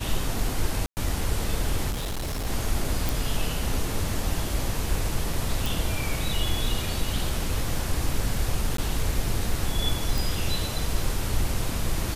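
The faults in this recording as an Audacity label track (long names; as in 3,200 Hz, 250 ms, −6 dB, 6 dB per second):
0.860000	0.970000	drop-out 109 ms
1.900000	2.470000	clipping −26.5 dBFS
3.090000	3.090000	click
5.660000	5.660000	click
8.770000	8.780000	drop-out 13 ms
10.180000	10.180000	click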